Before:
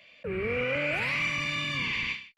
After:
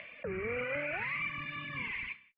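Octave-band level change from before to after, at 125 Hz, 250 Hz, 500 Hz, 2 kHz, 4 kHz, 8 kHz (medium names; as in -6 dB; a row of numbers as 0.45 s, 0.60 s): -9.0 dB, -8.0 dB, -6.0 dB, -7.0 dB, -15.0 dB, under -35 dB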